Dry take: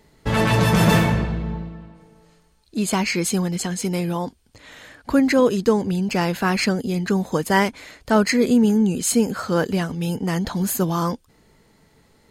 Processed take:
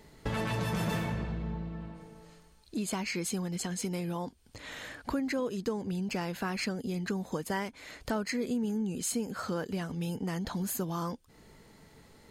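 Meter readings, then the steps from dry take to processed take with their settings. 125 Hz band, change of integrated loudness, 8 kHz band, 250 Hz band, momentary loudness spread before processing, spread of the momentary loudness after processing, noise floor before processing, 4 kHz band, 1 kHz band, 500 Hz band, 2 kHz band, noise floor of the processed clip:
-13.0 dB, -14.0 dB, -11.0 dB, -13.5 dB, 10 LU, 10 LU, -59 dBFS, -12.5 dB, -14.0 dB, -14.5 dB, -13.5 dB, -59 dBFS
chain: compression 3:1, threshold -35 dBFS, peak gain reduction 17 dB

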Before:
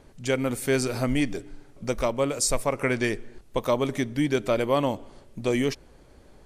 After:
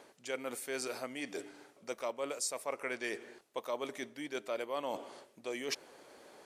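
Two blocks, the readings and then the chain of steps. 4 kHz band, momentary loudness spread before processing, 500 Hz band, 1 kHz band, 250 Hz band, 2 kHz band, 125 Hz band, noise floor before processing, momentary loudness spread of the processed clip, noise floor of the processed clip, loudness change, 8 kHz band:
-9.5 dB, 10 LU, -13.0 dB, -11.0 dB, -18.5 dB, -10.0 dB, -30.5 dB, -54 dBFS, 10 LU, -64 dBFS, -13.5 dB, -10.5 dB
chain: reverse; compression 6:1, threshold -36 dBFS, peak gain reduction 17 dB; reverse; high-pass 440 Hz 12 dB/octave; trim +3 dB

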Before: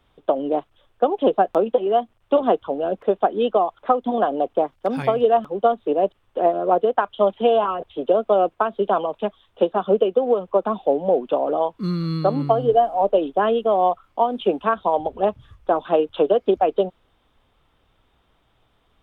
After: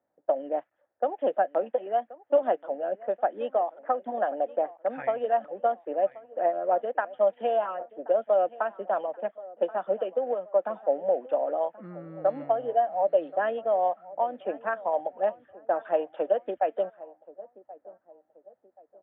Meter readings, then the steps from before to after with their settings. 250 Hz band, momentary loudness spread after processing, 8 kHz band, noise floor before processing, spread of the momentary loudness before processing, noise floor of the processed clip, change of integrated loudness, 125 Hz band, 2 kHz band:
-15.5 dB, 8 LU, no reading, -64 dBFS, 6 LU, -74 dBFS, -7.5 dB, under -20 dB, -4.0 dB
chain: cabinet simulation 380–2400 Hz, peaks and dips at 410 Hz -10 dB, 580 Hz +6 dB, 1.1 kHz -9 dB, 1.8 kHz +9 dB; feedback delay 1079 ms, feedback 40%, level -19 dB; level-controlled noise filter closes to 660 Hz, open at -13.5 dBFS; trim -7 dB

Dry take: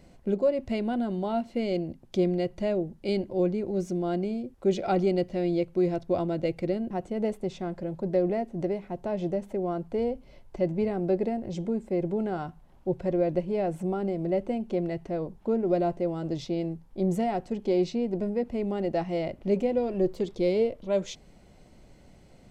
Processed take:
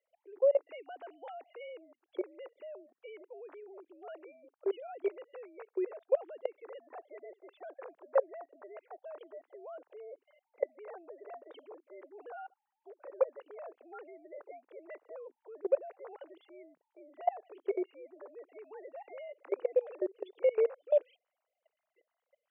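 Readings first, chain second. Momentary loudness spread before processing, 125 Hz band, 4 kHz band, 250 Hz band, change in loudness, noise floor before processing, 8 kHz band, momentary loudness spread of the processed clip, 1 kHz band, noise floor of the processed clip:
6 LU, under -40 dB, under -15 dB, -21.0 dB, -7.0 dB, -55 dBFS, no reading, 20 LU, -10.0 dB, under -85 dBFS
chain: formants replaced by sine waves; level held to a coarse grid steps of 22 dB; inverse Chebyshev high-pass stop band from 220 Hz, stop band 40 dB

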